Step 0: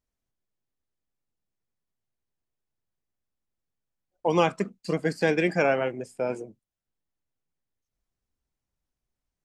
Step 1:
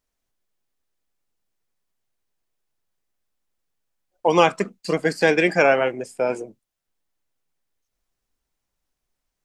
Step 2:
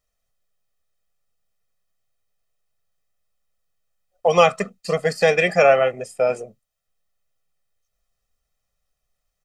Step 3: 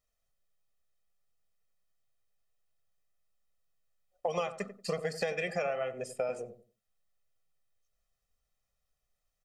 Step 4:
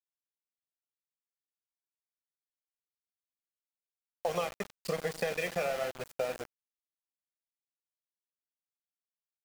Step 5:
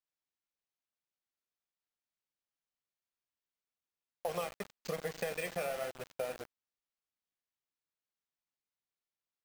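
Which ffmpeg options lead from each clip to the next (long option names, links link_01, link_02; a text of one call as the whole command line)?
ffmpeg -i in.wav -af "equalizer=frequency=93:width=0.35:gain=-8.5,volume=8dB" out.wav
ffmpeg -i in.wav -af "aecho=1:1:1.6:0.87,volume=-1dB" out.wav
ffmpeg -i in.wav -filter_complex "[0:a]acompressor=threshold=-23dB:ratio=16,asplit=2[link_01][link_02];[link_02]adelay=92,lowpass=frequency=830:poles=1,volume=-10dB,asplit=2[link_03][link_04];[link_04]adelay=92,lowpass=frequency=830:poles=1,volume=0.27,asplit=2[link_05][link_06];[link_06]adelay=92,lowpass=frequency=830:poles=1,volume=0.27[link_07];[link_01][link_03][link_05][link_07]amix=inputs=4:normalize=0,volume=-6dB" out.wav
ffmpeg -i in.wav -af "aecho=1:1:41|157:0.178|0.119,aeval=exprs='val(0)*gte(abs(val(0)),0.015)':channel_layout=same" out.wav
ffmpeg -i in.wav -af "acrusher=samples=4:mix=1:aa=0.000001,volume=-4.5dB" out.wav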